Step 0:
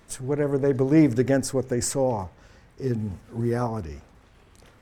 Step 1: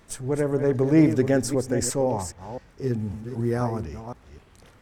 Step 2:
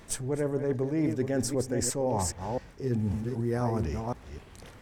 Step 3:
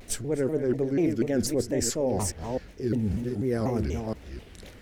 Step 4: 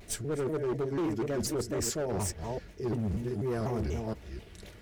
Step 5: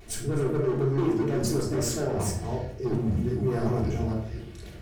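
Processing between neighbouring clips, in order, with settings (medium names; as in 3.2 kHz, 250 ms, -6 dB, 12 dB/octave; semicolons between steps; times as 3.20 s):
chunks repeated in reverse 258 ms, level -9.5 dB
peaking EQ 1.3 kHz -3 dB 0.31 oct; reverse; compression 10:1, threshold -29 dBFS, peak gain reduction 16.5 dB; reverse; trim +4 dB
ten-band graphic EQ 125 Hz -6 dB, 1 kHz -11 dB, 8 kHz -4 dB; vibrato with a chosen wave saw down 4.1 Hz, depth 250 cents; trim +5 dB
comb of notches 260 Hz; overload inside the chain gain 26 dB; trim -1.5 dB
simulated room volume 950 m³, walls furnished, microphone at 3.4 m; trim -1 dB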